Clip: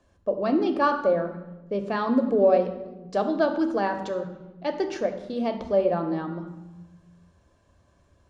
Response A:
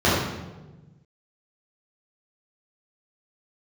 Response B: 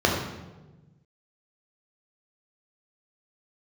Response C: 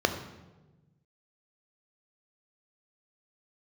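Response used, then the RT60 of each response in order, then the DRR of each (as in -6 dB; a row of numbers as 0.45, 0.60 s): C; 1.2, 1.2, 1.2 s; -10.0, -1.5, 6.5 dB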